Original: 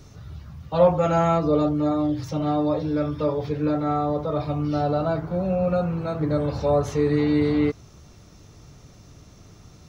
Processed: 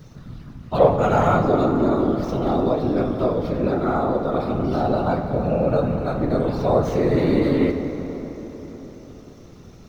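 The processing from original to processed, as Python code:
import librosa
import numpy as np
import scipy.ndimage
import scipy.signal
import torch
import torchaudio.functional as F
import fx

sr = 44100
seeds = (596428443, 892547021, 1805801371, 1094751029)

y = scipy.signal.medfilt(x, 5)
y = fx.whisperise(y, sr, seeds[0])
y = fx.rev_plate(y, sr, seeds[1], rt60_s=4.6, hf_ratio=0.55, predelay_ms=0, drr_db=6.0)
y = y * 10.0 ** (1.5 / 20.0)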